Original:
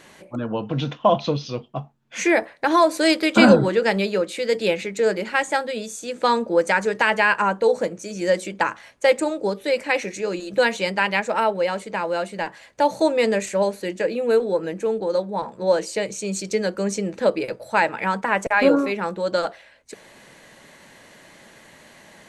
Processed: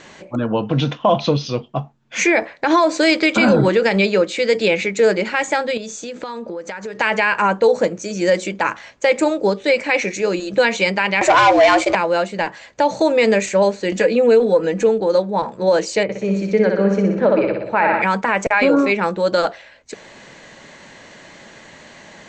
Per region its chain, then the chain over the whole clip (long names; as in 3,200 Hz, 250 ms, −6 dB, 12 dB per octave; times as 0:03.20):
0:05.77–0:06.99: low-pass filter 7,100 Hz + downward compressor 16 to 1, threshold −31 dBFS
0:11.21–0:11.95: frequency shifter +130 Hz + leveller curve on the samples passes 3 + downward compressor 3 to 1, threshold −16 dBFS
0:13.92–0:14.89: comb filter 4.1 ms, depth 56% + upward compression, threshold −23 dBFS
0:16.03–0:18.02: low-pass filter 1,900 Hz + flutter between parallel walls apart 10.5 metres, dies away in 0.81 s
whole clip: Butterworth low-pass 7,700 Hz 72 dB per octave; dynamic equaliser 2,300 Hz, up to +7 dB, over −42 dBFS, Q 7.5; boost into a limiter +11 dB; level −4.5 dB